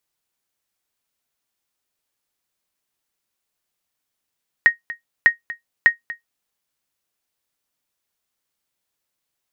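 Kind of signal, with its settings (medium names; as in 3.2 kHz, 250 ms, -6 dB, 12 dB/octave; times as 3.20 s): sonar ping 1.87 kHz, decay 0.13 s, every 0.60 s, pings 3, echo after 0.24 s, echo -17.5 dB -3 dBFS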